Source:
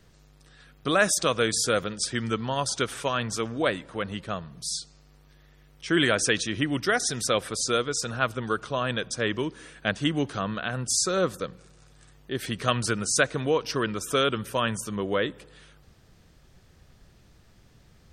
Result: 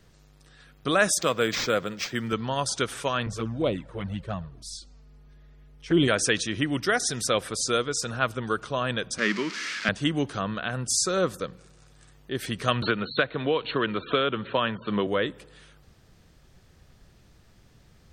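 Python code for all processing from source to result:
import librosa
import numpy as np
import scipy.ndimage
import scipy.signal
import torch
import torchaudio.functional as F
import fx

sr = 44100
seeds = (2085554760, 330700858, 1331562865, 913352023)

y = fx.chain(x, sr, fx.highpass(hz=110.0, slope=12),
    fx.resample_linear(factor=4), at=(1.21, 2.33))
y = fx.chain(y, sr, fx.tilt_eq(slope=-2.0),
    fx.env_flanger(rest_ms=5.6, full_db=-19.0), at=(3.26, 6.08))
y = fx.chain(y, sr, fx.crossing_spikes(level_db=-17.5),
    fx.cabinet(low_hz=190.0, low_slope=24, high_hz=5100.0, hz=(200.0, 500.0, 770.0, 1300.0, 2100.0, 3600.0), db=(9, -6, -7, 7, 8, -4)), at=(9.18, 9.89))
y = fx.chain(y, sr, fx.brickwall_lowpass(high_hz=4400.0),
    fx.low_shelf(hz=95.0, db=-11.5),
    fx.band_squash(depth_pct=100), at=(12.82, 15.07))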